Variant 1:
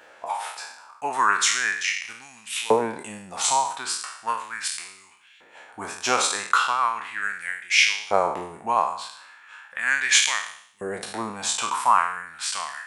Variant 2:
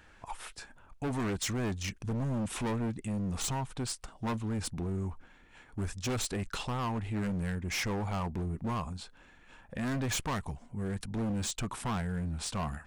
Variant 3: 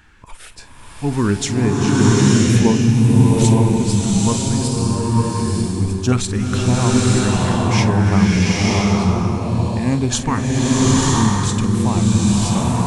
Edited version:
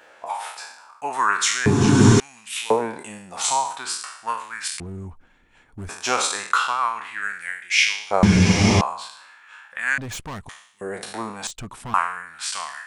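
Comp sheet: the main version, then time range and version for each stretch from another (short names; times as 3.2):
1
1.66–2.2 from 3
4.8–5.89 from 2
8.23–8.81 from 3
9.98–10.49 from 2
11.47–11.94 from 2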